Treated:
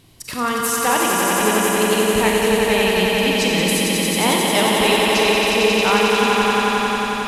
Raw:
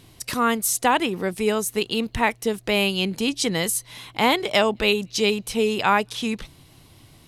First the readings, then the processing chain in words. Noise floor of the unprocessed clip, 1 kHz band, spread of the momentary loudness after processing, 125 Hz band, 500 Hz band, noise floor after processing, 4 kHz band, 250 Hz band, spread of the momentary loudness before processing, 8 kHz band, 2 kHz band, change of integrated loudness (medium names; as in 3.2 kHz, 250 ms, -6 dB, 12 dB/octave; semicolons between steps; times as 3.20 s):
-52 dBFS, +6.0 dB, 4 LU, +6.5 dB, +6.5 dB, -26 dBFS, +6.5 dB, +5.5 dB, 8 LU, +6.5 dB, +7.0 dB, +6.0 dB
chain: echo with a slow build-up 90 ms, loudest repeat 5, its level -5 dB; Schroeder reverb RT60 1.5 s, combs from 33 ms, DRR 2 dB; trim -1.5 dB